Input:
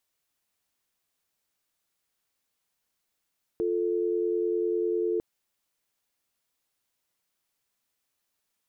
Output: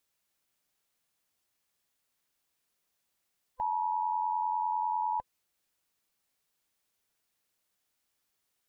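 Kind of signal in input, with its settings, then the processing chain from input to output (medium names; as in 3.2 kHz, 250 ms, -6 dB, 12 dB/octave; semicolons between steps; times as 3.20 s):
call progress tone dial tone, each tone -27 dBFS 1.60 s
split-band scrambler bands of 500 Hz; peak limiter -25 dBFS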